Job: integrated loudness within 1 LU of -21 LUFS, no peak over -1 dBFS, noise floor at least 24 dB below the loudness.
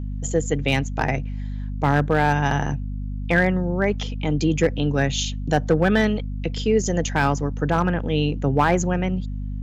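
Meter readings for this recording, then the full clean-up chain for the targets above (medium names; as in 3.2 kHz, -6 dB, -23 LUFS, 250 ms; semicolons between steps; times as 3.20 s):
clipped samples 0.7%; clipping level -9.5 dBFS; hum 50 Hz; highest harmonic 250 Hz; hum level -26 dBFS; loudness -22.5 LUFS; peak level -9.5 dBFS; loudness target -21.0 LUFS
-> clip repair -9.5 dBFS; de-hum 50 Hz, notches 5; trim +1.5 dB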